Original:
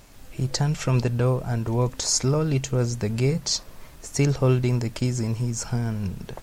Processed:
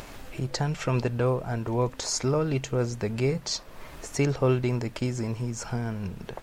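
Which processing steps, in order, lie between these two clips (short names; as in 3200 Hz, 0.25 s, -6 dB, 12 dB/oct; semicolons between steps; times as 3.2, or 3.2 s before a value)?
tone controls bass -6 dB, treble -8 dB; upward compressor, threshold -32 dBFS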